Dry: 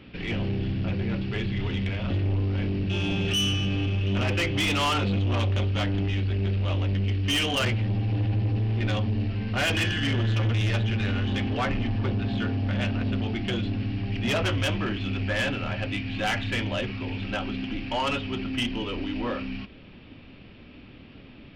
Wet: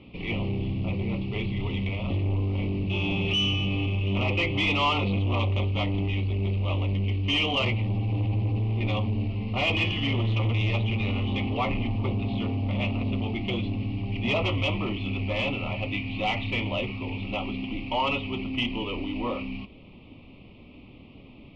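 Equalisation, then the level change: Chebyshev band-stop 1100–2300 Hz, order 2; LPF 3100 Hz 12 dB/oct; dynamic EQ 1800 Hz, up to +6 dB, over -44 dBFS, Q 0.86; 0.0 dB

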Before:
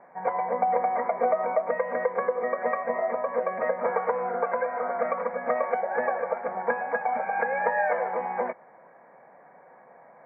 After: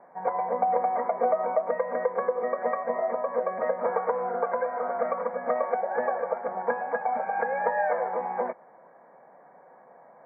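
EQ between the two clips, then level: LPF 1500 Hz 12 dB/oct; bell 73 Hz -13.5 dB 0.87 oct; 0.0 dB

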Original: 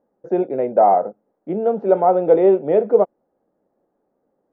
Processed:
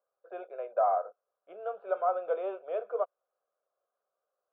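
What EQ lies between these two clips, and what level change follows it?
ladder band-pass 1200 Hz, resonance 25%; tilt +3 dB/oct; fixed phaser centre 1300 Hz, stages 8; +5.5 dB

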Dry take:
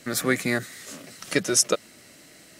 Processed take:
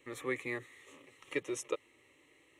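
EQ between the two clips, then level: tape spacing loss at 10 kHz 20 dB; tilt +1.5 dB/oct; fixed phaser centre 1000 Hz, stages 8; -7.0 dB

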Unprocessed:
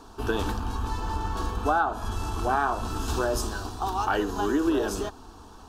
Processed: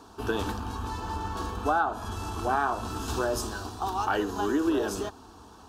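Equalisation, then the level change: HPF 67 Hz; -1.5 dB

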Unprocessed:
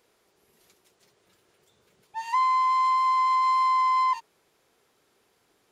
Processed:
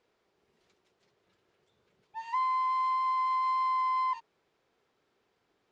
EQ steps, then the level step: air absorption 120 m; -6.0 dB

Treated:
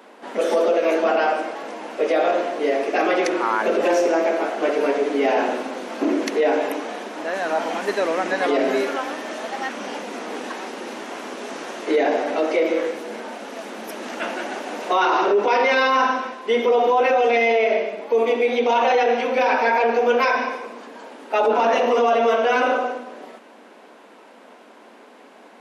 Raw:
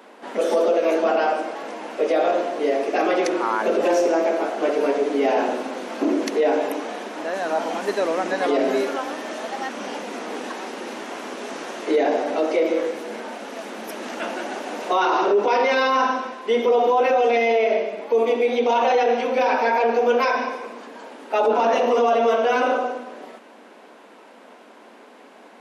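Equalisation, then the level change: dynamic EQ 2000 Hz, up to +4 dB, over -35 dBFS, Q 1; 0.0 dB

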